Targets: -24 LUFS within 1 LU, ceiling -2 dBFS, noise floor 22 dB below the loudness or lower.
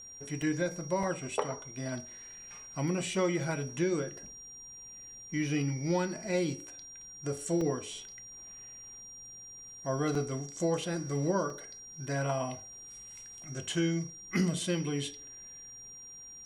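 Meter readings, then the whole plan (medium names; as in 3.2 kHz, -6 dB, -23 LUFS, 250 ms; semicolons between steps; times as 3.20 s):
dropouts 5; longest dropout 3.0 ms; steady tone 5.7 kHz; tone level -46 dBFS; loudness -33.5 LUFS; peak level -14.0 dBFS; loudness target -24.0 LUFS
-> interpolate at 0.42/1.03/7.61/10.15/11.50 s, 3 ms; band-stop 5.7 kHz, Q 30; trim +9.5 dB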